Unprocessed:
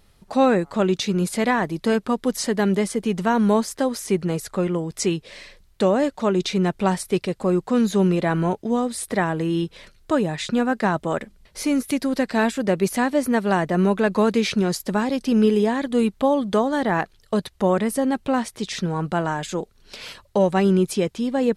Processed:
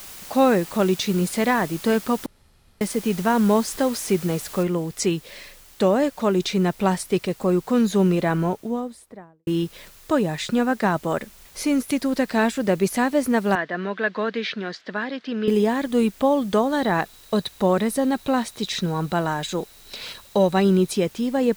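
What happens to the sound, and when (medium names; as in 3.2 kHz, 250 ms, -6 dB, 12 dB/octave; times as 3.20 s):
2.26–2.81 s: room tone
3.65–4.13 s: jump at every zero crossing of -36 dBFS
4.63 s: noise floor step -40 dB -50 dB
8.19–9.47 s: studio fade out
13.55–15.48 s: cabinet simulation 370–4000 Hz, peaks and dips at 380 Hz -6 dB, 550 Hz -5 dB, 850 Hz -9 dB, 1.2 kHz -3 dB, 1.7 kHz +6 dB, 2.5 kHz -4 dB
16.72–20.95 s: small resonant body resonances 3.9 kHz, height 13 dB, ringing for 20 ms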